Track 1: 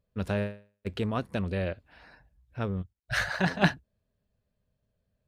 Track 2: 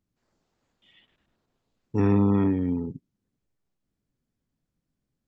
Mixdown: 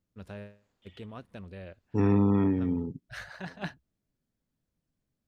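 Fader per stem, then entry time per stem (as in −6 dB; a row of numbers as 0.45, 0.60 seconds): −13.5, −2.5 decibels; 0.00, 0.00 seconds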